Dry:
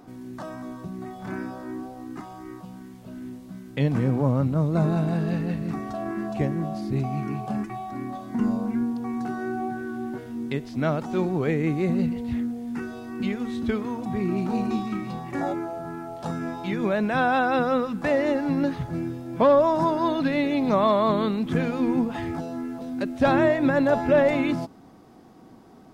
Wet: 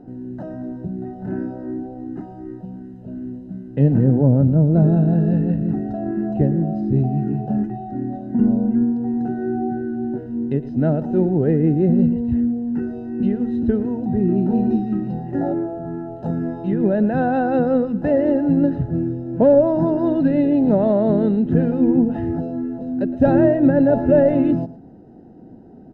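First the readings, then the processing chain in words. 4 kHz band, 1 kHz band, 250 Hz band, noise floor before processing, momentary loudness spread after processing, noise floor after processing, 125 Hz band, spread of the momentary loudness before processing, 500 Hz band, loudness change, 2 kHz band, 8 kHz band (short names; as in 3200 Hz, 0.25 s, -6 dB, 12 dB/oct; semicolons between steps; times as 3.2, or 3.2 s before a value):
under -10 dB, -2.0 dB, +8.0 dB, -48 dBFS, 15 LU, -40 dBFS, +8.5 dB, 16 LU, +5.0 dB, +6.5 dB, -6.0 dB, n/a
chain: running mean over 39 samples; on a send: echo 0.113 s -16.5 dB; on the sum: gain +8.5 dB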